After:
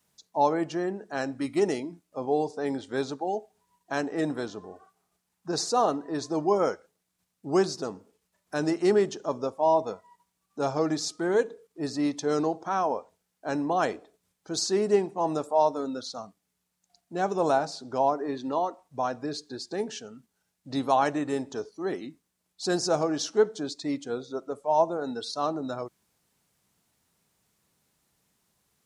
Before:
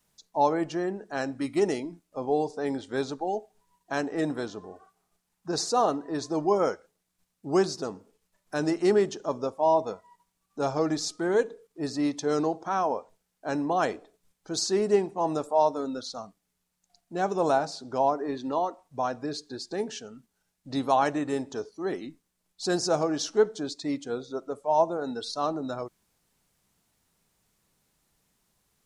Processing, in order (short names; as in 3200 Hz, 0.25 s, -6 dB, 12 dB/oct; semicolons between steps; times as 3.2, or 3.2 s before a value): HPF 63 Hz